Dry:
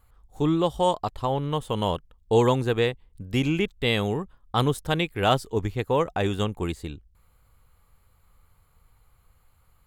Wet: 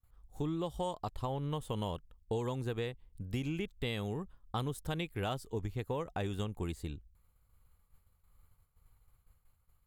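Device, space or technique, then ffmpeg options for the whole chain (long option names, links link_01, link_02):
ASMR close-microphone chain: -af "lowshelf=frequency=210:gain=6,acompressor=threshold=-24dB:ratio=6,highshelf=frequency=7600:gain=7,agate=range=-33dB:threshold=-48dB:ratio=3:detection=peak,volume=-8.5dB"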